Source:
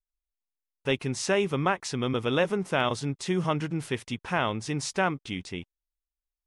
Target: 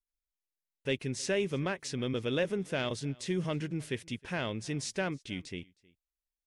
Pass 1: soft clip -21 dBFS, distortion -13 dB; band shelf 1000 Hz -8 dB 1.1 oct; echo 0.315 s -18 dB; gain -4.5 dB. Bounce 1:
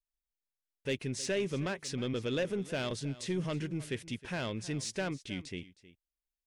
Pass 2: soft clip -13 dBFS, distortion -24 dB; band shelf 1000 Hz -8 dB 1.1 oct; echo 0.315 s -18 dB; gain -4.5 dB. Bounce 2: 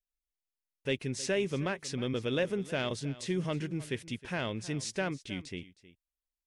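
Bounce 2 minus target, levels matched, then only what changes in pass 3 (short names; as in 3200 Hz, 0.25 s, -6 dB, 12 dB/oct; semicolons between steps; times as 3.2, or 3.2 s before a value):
echo-to-direct +7.5 dB
change: echo 0.315 s -25.5 dB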